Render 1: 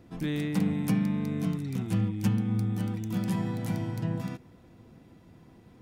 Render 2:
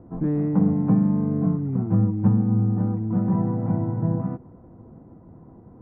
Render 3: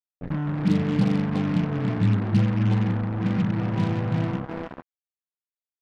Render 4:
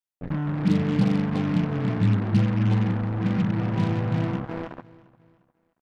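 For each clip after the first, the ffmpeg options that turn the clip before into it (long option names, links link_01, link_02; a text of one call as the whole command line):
ffmpeg -i in.wav -af "lowpass=frequency=1100:width=0.5412,lowpass=frequency=1100:width=1.3066,volume=7.5dB" out.wav
ffmpeg -i in.wav -filter_complex "[0:a]acrossover=split=260|1300[link_01][link_02][link_03];[link_01]adelay=90[link_04];[link_02]adelay=460[link_05];[link_04][link_05][link_03]amix=inputs=3:normalize=0,acrusher=bits=4:mix=0:aa=0.5" out.wav
ffmpeg -i in.wav -af "aecho=1:1:352|704|1056:0.0841|0.0337|0.0135" out.wav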